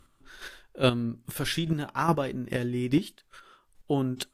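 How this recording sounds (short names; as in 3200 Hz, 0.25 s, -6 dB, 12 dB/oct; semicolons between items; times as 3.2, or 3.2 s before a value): chopped level 2.4 Hz, depth 60%, duty 15%; AAC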